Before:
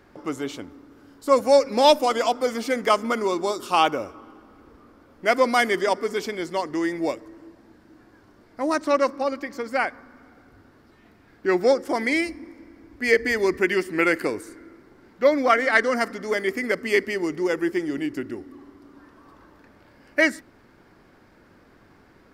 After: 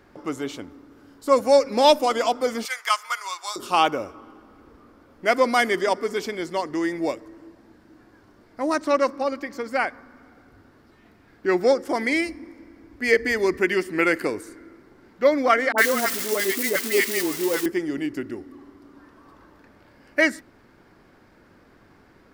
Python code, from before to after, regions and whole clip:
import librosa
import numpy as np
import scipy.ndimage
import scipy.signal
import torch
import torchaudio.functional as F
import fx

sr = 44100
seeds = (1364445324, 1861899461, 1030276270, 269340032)

y = fx.chain(x, sr, fx.highpass(hz=980.0, slope=24),
    fx.high_shelf(hz=4000.0, db=5.5), at=(2.65, 3.56))
y = fx.chain(y, sr, fx.crossing_spikes(level_db=-16.0),
    fx.highpass(hz=160.0, slope=12),
    fx.dispersion(late='highs', ms=63.0, hz=900.0), at=(15.72, 17.66))